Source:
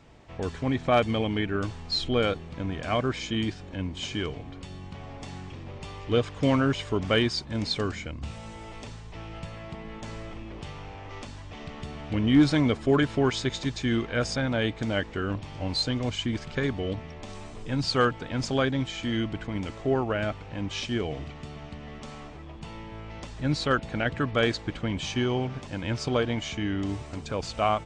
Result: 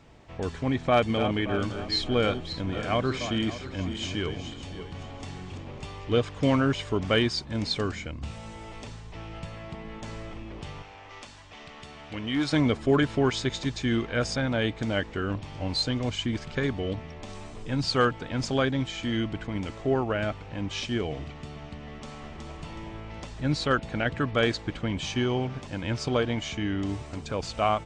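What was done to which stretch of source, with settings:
0:00.81–0:05.86: feedback delay that plays each chunk backwards 287 ms, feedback 54%, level −9 dB
0:10.82–0:12.53: low-shelf EQ 470 Hz −12 dB
0:21.86–0:22.60: delay throw 370 ms, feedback 40%, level −3 dB

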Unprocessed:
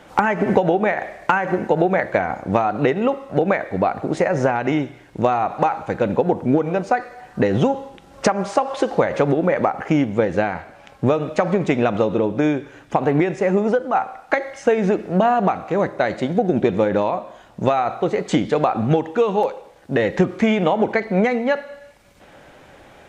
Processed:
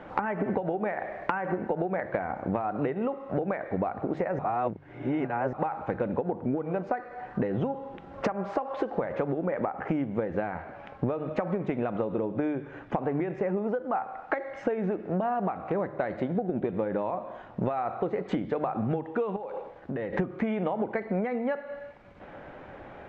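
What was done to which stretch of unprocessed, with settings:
0:04.39–0:05.53: reverse
0:19.36–0:20.13: downward compressor 8 to 1, threshold −30 dBFS
whole clip: low-pass filter 1,800 Hz 12 dB per octave; mains-hum notches 50/100/150 Hz; downward compressor 6 to 1, threshold −28 dBFS; level +1.5 dB

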